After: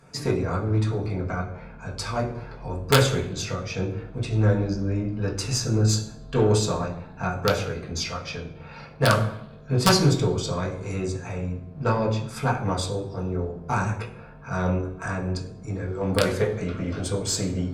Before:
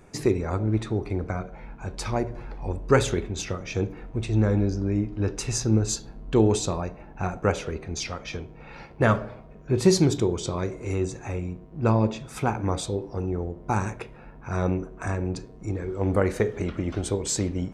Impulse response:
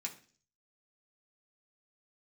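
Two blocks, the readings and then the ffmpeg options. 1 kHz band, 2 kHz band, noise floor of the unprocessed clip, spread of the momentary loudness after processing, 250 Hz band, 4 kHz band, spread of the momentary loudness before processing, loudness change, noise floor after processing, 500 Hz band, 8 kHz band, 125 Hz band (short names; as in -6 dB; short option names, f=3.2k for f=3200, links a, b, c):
+2.5 dB, +4.0 dB, -46 dBFS, 12 LU, -1.0 dB, +6.0 dB, 12 LU, +1.0 dB, -43 dBFS, 0.0 dB, +1.0 dB, +2.0 dB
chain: -filter_complex "[0:a]aeval=exprs='(mod(2.66*val(0)+1,2)-1)/2.66':c=same,aeval=exprs='0.398*(cos(1*acos(clip(val(0)/0.398,-1,1)))-cos(1*PI/2))+0.0178*(cos(6*acos(clip(val(0)/0.398,-1,1)))-cos(6*PI/2))':c=same[a];[1:a]atrim=start_sample=2205,asetrate=27783,aresample=44100[b];[a][b]afir=irnorm=-1:irlink=0"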